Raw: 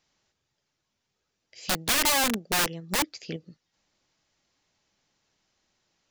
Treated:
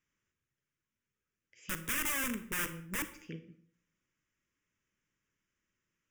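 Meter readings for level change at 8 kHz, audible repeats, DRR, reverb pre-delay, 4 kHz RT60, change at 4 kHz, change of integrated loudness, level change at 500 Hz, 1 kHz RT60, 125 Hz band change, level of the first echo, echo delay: -11.0 dB, no echo, 10.5 dB, 34 ms, 0.45 s, -16.5 dB, -10.0 dB, -14.0 dB, 0.60 s, -7.5 dB, no echo, no echo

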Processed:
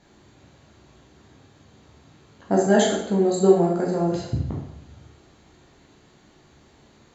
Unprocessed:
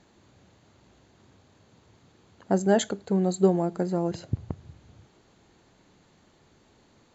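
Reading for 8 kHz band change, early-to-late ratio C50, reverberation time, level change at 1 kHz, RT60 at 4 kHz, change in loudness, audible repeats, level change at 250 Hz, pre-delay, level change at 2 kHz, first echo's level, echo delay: no reading, 2.5 dB, 0.75 s, +5.5 dB, 0.65 s, +4.5 dB, no echo, +4.0 dB, 11 ms, +7.0 dB, no echo, no echo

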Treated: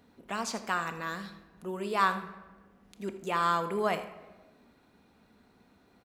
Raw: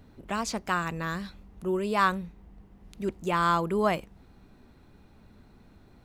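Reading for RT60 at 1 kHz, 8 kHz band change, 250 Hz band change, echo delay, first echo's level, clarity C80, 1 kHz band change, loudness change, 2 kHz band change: 1.1 s, -2.0 dB, -7.0 dB, 80 ms, -15.0 dB, 12.0 dB, -2.0 dB, -3.0 dB, -2.5 dB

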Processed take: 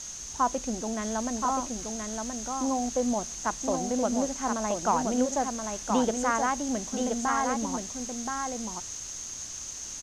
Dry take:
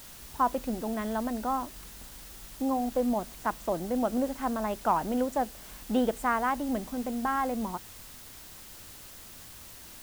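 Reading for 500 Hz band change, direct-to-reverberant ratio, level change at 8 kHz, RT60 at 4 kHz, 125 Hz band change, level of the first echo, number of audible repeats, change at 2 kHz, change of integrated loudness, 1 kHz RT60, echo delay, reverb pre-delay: +1.5 dB, no reverb, +15.0 dB, no reverb, +1.5 dB, -4.5 dB, 1, +2.0 dB, +1.0 dB, no reverb, 1025 ms, no reverb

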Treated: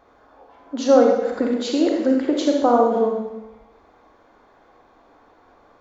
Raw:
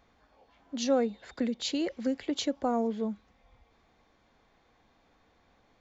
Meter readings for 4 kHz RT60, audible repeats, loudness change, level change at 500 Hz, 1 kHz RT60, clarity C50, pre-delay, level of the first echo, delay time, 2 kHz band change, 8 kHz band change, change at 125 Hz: 0.95 s, no echo, +12.5 dB, +14.5 dB, 1.0 s, 1.5 dB, 31 ms, no echo, no echo, +9.5 dB, no reading, no reading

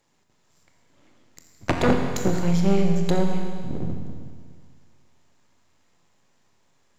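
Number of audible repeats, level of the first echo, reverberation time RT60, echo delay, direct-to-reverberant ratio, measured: no echo, no echo, 1.9 s, no echo, 2.5 dB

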